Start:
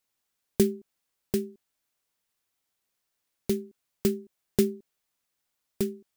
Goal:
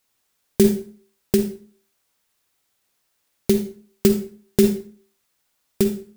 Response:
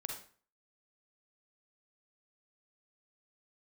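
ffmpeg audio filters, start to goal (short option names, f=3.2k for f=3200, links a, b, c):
-filter_complex "[0:a]asplit=2[a][b];[1:a]atrim=start_sample=2205[c];[b][c]afir=irnorm=-1:irlink=0,volume=3.5dB[d];[a][d]amix=inputs=2:normalize=0,alimiter=level_in=4dB:limit=-1dB:release=50:level=0:latency=1,volume=-1dB"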